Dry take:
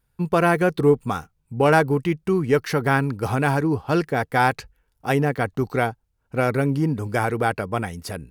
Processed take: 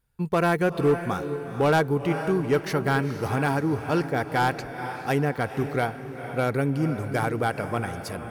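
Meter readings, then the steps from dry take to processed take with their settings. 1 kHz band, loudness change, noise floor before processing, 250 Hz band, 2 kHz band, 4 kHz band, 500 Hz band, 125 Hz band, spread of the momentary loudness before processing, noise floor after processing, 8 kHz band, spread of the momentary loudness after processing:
−3.5 dB, −3.5 dB, −71 dBFS, −3.0 dB, −4.0 dB, −2.0 dB, −3.5 dB, −3.0 dB, 10 LU, −38 dBFS, −3.0 dB, 8 LU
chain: feedback delay with all-pass diffusion 468 ms, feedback 41%, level −10 dB
hard clipping −11 dBFS, distortion −19 dB
level −3.5 dB

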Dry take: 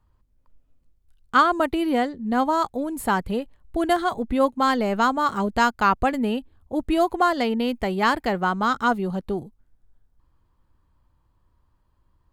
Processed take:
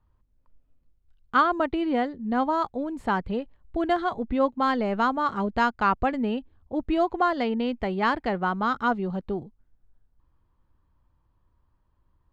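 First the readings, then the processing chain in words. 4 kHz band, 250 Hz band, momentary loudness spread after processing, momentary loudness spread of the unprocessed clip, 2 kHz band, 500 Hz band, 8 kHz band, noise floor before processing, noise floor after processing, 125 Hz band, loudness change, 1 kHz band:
−6.0 dB, −2.5 dB, 8 LU, 9 LU, −3.5 dB, −3.0 dB, below −15 dB, −66 dBFS, −69 dBFS, −2.5 dB, −3.0 dB, −3.5 dB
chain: high-frequency loss of the air 160 metres
level −2.5 dB

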